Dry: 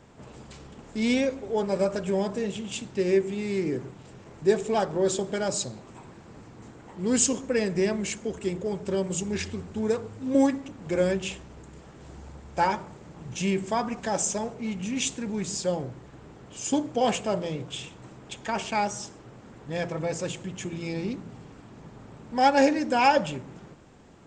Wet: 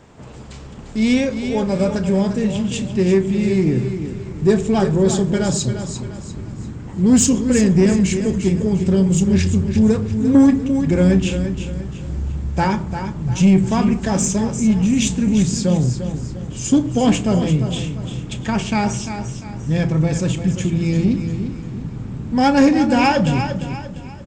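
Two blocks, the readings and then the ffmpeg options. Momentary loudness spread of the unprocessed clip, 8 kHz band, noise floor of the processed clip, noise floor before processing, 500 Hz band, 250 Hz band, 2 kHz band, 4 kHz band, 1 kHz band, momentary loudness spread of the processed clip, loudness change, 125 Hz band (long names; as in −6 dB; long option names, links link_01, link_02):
22 LU, +6.5 dB, −34 dBFS, −49 dBFS, +5.5 dB, +14.0 dB, +5.5 dB, +6.5 dB, +3.5 dB, 14 LU, +9.5 dB, +18.0 dB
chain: -filter_complex "[0:a]asubboost=boost=5.5:cutoff=240,asplit=2[link_01][link_02];[link_02]adelay=32,volume=-13.5dB[link_03];[link_01][link_03]amix=inputs=2:normalize=0,asplit=2[link_04][link_05];[link_05]aecho=0:1:347|694|1041|1388:0.335|0.127|0.0484|0.0184[link_06];[link_04][link_06]amix=inputs=2:normalize=0,aeval=exprs='0.501*(cos(1*acos(clip(val(0)/0.501,-1,1)))-cos(1*PI/2))+0.0316*(cos(5*acos(clip(val(0)/0.501,-1,1)))-cos(5*PI/2))+0.00316*(cos(8*acos(clip(val(0)/0.501,-1,1)))-cos(8*PI/2))':channel_layout=same,volume=4dB"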